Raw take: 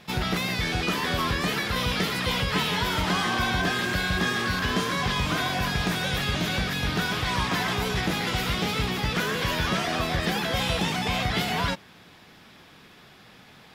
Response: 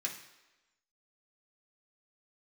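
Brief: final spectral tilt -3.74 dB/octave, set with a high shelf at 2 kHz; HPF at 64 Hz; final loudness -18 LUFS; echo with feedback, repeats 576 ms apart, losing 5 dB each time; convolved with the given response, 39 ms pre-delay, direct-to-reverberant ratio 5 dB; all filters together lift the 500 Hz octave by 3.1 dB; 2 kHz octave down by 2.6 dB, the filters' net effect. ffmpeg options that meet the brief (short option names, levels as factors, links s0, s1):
-filter_complex "[0:a]highpass=64,equalizer=f=500:t=o:g=4,highshelf=f=2000:g=3,equalizer=f=2000:t=o:g=-5.5,aecho=1:1:576|1152|1728|2304|2880|3456|4032:0.562|0.315|0.176|0.0988|0.0553|0.031|0.0173,asplit=2[s0][s1];[1:a]atrim=start_sample=2205,adelay=39[s2];[s1][s2]afir=irnorm=-1:irlink=0,volume=0.473[s3];[s0][s3]amix=inputs=2:normalize=0,volume=1.78"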